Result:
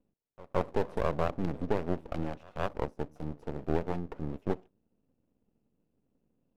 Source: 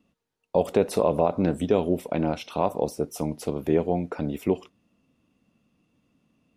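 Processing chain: Wiener smoothing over 41 samples; pre-echo 0.167 s -21.5 dB; half-wave rectifier; gain -3 dB

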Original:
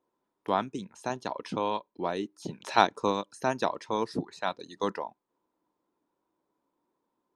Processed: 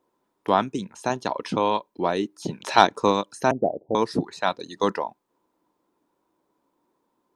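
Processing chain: 3.51–3.95 steep low-pass 760 Hz 96 dB/oct; soft clip -7.5 dBFS, distortion -20 dB; gain +7.5 dB

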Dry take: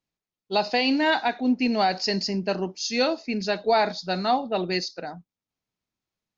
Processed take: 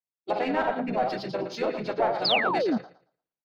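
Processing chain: regenerating reverse delay 0.106 s, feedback 52%, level -6.5 dB; treble ducked by the level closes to 2600 Hz, closed at -18.5 dBFS; notches 50/100/150/200/250 Hz; in parallel at -8 dB: overloaded stage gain 28 dB; on the sum: overdrive pedal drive 15 dB, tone 1100 Hz, clips at -8 dBFS; harmoniser -7 st -9 dB, -3 st -3 dB; painted sound fall, 4.16–5.14, 200–5200 Hz -16 dBFS; time stretch by phase-locked vocoder 0.54×; three-band expander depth 40%; gain -8 dB

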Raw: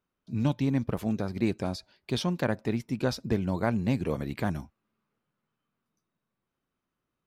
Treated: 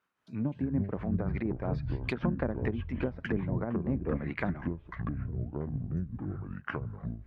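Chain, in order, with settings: treble ducked by the level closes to 390 Hz, closed at -24 dBFS; HPF 180 Hz 6 dB/oct; echoes that change speed 0.118 s, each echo -7 st, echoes 3; dynamic EQ 2100 Hz, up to +4 dB, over -59 dBFS, Q 1.9; tremolo triangle 5.4 Hz, depth 55%; bell 1600 Hz +11 dB 1.9 oct

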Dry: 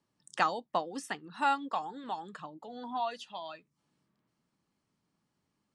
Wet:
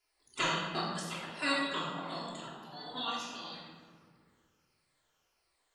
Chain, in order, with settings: moving spectral ripple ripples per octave 0.92, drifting -1.5 Hz, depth 12 dB; darkening echo 0.125 s, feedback 72%, low-pass 3000 Hz, level -18 dB; spectral gate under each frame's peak -15 dB weak; reverb RT60 1.3 s, pre-delay 3 ms, DRR -5.5 dB; gain +2.5 dB

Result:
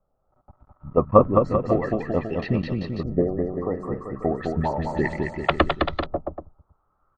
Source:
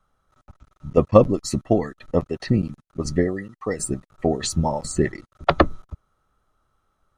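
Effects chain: bouncing-ball echo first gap 0.21 s, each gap 0.85×, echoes 5; LFO low-pass saw up 0.33 Hz 600–4100 Hz; gain -4 dB

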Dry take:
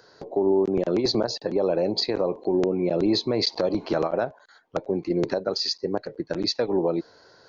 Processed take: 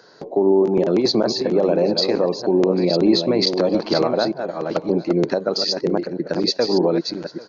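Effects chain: reverse delay 0.617 s, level -6.5 dB; resonant low shelf 120 Hz -9 dB, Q 1.5; on a send: echo 0.794 s -21.5 dB; on the sum: downsampling 16000 Hz; gain +4.5 dB

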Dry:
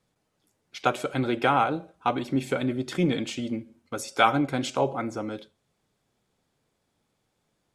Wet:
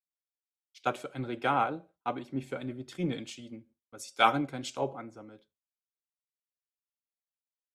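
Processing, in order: gate with hold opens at -42 dBFS; three-band expander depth 100%; gain -9 dB

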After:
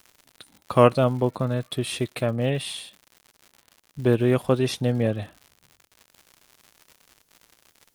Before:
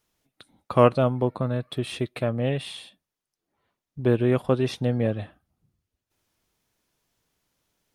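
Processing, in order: high shelf 5700 Hz +11 dB; crackle 140/s -38 dBFS; gain +1 dB

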